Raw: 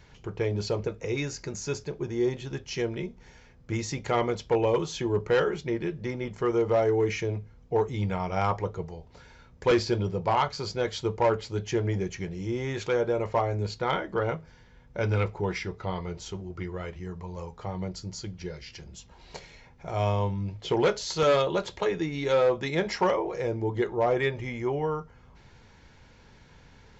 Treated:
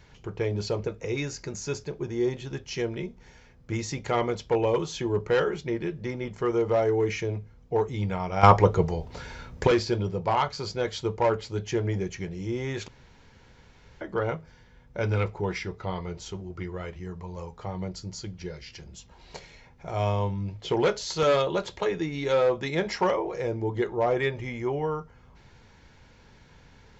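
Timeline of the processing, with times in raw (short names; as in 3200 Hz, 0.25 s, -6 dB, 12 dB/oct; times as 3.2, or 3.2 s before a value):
8.43–9.67 gain +11.5 dB
12.88–14.01 room tone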